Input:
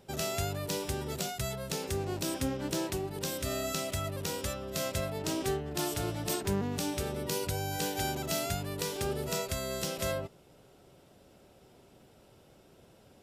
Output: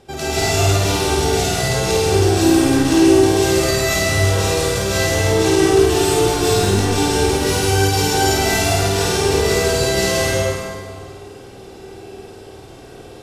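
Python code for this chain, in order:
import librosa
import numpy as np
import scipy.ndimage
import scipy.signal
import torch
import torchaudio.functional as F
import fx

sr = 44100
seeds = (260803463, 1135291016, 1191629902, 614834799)

p1 = 10.0 ** (-30.0 / 20.0) * np.tanh(x / 10.0 ** (-30.0 / 20.0))
p2 = scipy.signal.sosfilt(scipy.signal.butter(2, 9900.0, 'lowpass', fs=sr, output='sos'), p1)
p3 = p2 + 0.42 * np.pad(p2, (int(2.6 * sr / 1000.0), 0))[:len(p2)]
p4 = p3 + fx.room_flutter(p3, sr, wall_m=8.9, rt60_s=0.82, dry=0)
p5 = fx.rev_plate(p4, sr, seeds[0], rt60_s=1.8, hf_ratio=0.85, predelay_ms=115, drr_db=-8.5)
y = p5 * librosa.db_to_amplitude(9.0)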